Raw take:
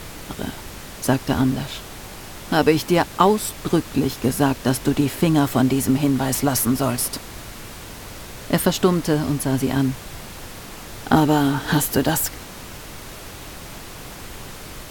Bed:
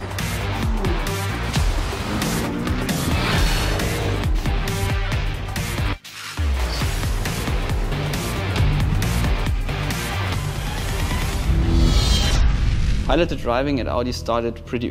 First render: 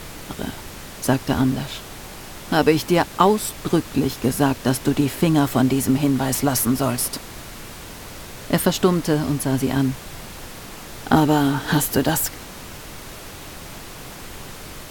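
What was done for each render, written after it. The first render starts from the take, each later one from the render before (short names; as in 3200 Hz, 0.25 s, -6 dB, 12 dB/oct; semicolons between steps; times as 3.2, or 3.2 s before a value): de-hum 50 Hz, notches 2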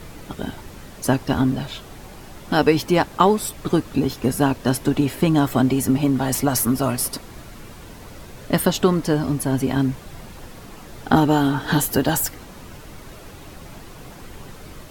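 denoiser 8 dB, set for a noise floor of -37 dBFS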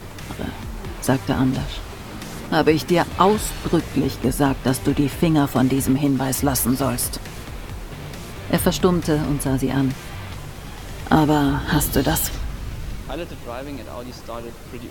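add bed -11.5 dB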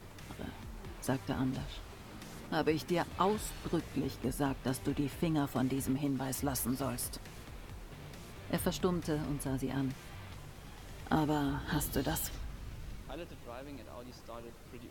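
gain -15 dB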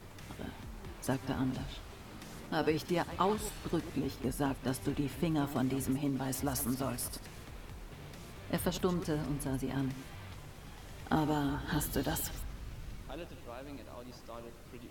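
reverse delay 0.109 s, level -13 dB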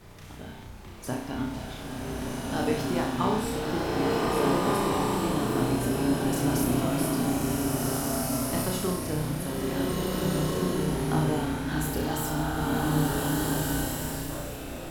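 on a send: flutter echo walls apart 5.6 m, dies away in 0.59 s; on the sum: bloom reverb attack 1.71 s, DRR -5 dB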